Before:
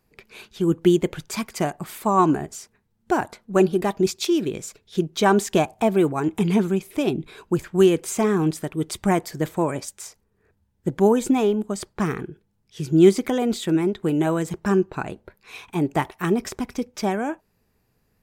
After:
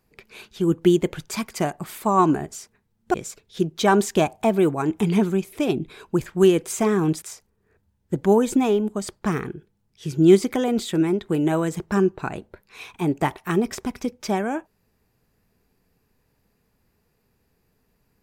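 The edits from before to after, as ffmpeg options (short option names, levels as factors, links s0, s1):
-filter_complex "[0:a]asplit=3[s0][s1][s2];[s0]atrim=end=3.142[s3];[s1]atrim=start=4.518:end=8.602[s4];[s2]atrim=start=9.958[s5];[s3][s4]acrossfade=d=0.004:c1=hsin:c2=hsin[s6];[s6][s5]acrossfade=d=0.004:c1=hsin:c2=hsin"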